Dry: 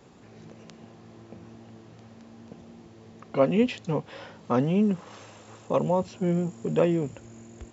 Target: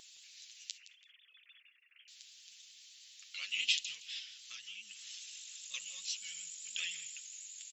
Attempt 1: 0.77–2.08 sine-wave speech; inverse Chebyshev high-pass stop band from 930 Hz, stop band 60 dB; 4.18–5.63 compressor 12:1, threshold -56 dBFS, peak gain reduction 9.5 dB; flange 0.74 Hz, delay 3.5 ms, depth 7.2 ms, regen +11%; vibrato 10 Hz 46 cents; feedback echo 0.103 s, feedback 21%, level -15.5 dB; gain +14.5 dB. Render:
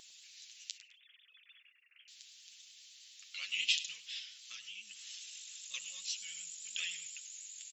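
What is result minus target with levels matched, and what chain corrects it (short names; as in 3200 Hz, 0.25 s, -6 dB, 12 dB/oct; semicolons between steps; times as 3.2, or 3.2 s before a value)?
echo 63 ms early
0.77–2.08 sine-wave speech; inverse Chebyshev high-pass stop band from 930 Hz, stop band 60 dB; 4.18–5.63 compressor 12:1, threshold -56 dBFS, peak gain reduction 9.5 dB; flange 0.74 Hz, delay 3.5 ms, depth 7.2 ms, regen +11%; vibrato 10 Hz 46 cents; feedback echo 0.166 s, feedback 21%, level -15.5 dB; gain +14.5 dB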